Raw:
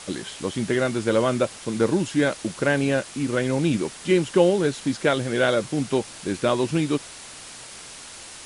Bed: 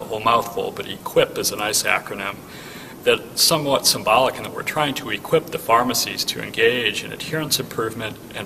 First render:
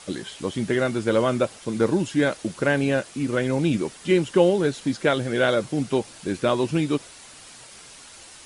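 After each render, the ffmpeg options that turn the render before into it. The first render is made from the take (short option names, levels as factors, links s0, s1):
-af "afftdn=nr=6:nf=-41"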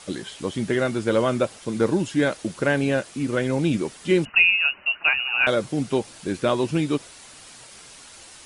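-filter_complex "[0:a]asettb=1/sr,asplit=3[s0][s1][s2];[s0]atrim=end=4.254[s3];[s1]atrim=start=4.25:end=5.47,asetpts=PTS-STARTPTS,afade=t=in:d=0.004:c=qsin,afade=t=out:st=1.216:d=0.004:c=qsin,lowpass=f=2600:t=q:w=0.5098,lowpass=f=2600:t=q:w=0.6013,lowpass=f=2600:t=q:w=0.9,lowpass=f=2600:t=q:w=2.563,afreqshift=-3000[s4];[s2]atrim=start=5.466[s5];[s3][s4]acrossfade=d=0.004:c1=hsin:c2=qsin[s6];[s6][s5]acrossfade=d=0.004:c1=qsin:c2=hsin"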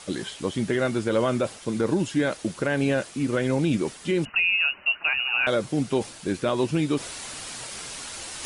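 -af "alimiter=limit=0.2:level=0:latency=1:release=71,areverse,acompressor=mode=upward:threshold=0.0447:ratio=2.5,areverse"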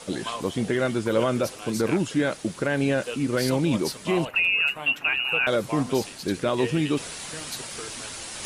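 -filter_complex "[1:a]volume=0.141[s0];[0:a][s0]amix=inputs=2:normalize=0"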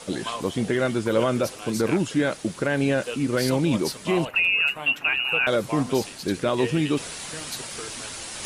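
-af "volume=1.12"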